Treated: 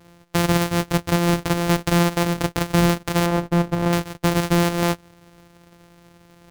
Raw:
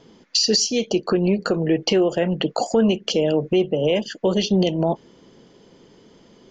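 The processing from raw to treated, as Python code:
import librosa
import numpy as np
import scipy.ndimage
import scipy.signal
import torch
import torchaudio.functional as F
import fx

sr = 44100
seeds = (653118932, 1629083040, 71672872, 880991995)

y = np.r_[np.sort(x[:len(x) // 256 * 256].reshape(-1, 256), axis=1).ravel(), x[len(x) // 256 * 256:]]
y = fx.high_shelf(y, sr, hz=2100.0, db=-11.5, at=(3.26, 3.93))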